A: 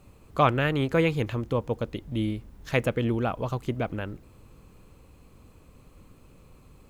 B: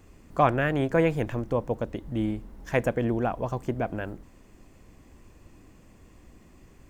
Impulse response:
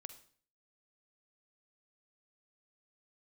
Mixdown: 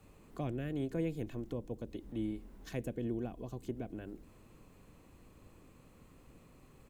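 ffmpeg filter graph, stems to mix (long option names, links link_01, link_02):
-filter_complex "[0:a]acompressor=threshold=-30dB:ratio=6,highpass=120,alimiter=level_in=7.5dB:limit=-24dB:level=0:latency=1:release=69,volume=-7.5dB,volume=-6dB[link_01];[1:a]equalizer=frequency=4900:width=1.8:gain=-8,adelay=2.6,volume=-9dB[link_02];[link_01][link_02]amix=inputs=2:normalize=0,acrossover=split=450|3000[link_03][link_04][link_05];[link_04]acompressor=threshold=-55dB:ratio=6[link_06];[link_03][link_06][link_05]amix=inputs=3:normalize=0"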